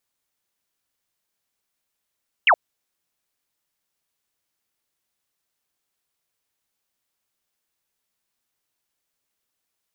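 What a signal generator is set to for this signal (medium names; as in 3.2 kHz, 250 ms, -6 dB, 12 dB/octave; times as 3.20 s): laser zap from 3.1 kHz, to 570 Hz, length 0.07 s sine, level -11 dB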